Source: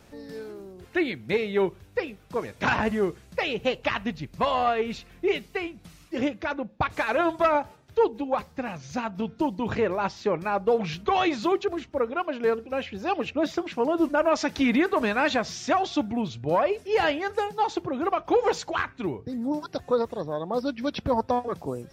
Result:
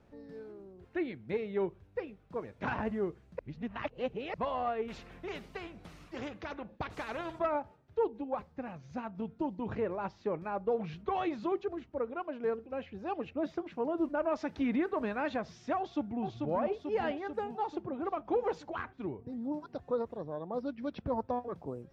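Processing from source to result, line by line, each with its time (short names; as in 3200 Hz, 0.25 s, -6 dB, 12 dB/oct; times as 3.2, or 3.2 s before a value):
3.39–4.34 reverse
4.88–7.39 spectral compressor 2:1
15.78–16.23 echo throw 0.44 s, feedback 65%, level -3.5 dB
whole clip: LPF 1100 Hz 6 dB/oct; gain -8 dB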